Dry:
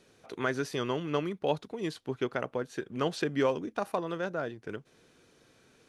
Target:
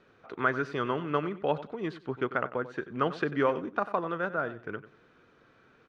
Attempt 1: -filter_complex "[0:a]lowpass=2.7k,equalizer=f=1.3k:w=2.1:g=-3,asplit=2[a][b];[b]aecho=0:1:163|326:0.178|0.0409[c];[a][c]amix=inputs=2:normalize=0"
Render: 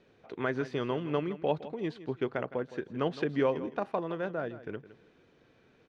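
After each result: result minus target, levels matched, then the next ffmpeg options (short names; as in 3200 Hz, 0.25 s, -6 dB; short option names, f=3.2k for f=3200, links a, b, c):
echo 69 ms late; 1000 Hz band -4.0 dB
-filter_complex "[0:a]lowpass=2.7k,equalizer=f=1.3k:w=2.1:g=-3,asplit=2[a][b];[b]aecho=0:1:94|188:0.178|0.0409[c];[a][c]amix=inputs=2:normalize=0"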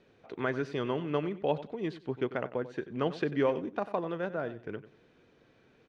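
1000 Hz band -4.0 dB
-filter_complex "[0:a]lowpass=2.7k,equalizer=f=1.3k:w=2.1:g=8.5,asplit=2[a][b];[b]aecho=0:1:94|188:0.178|0.0409[c];[a][c]amix=inputs=2:normalize=0"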